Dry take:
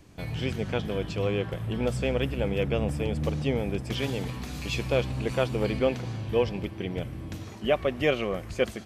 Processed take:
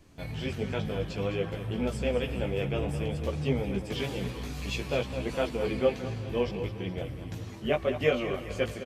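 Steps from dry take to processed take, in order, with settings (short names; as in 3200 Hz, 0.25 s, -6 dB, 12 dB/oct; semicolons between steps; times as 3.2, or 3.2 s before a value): feedback echo 0.209 s, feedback 56%, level -11 dB; chorus voices 6, 0.52 Hz, delay 16 ms, depth 4.9 ms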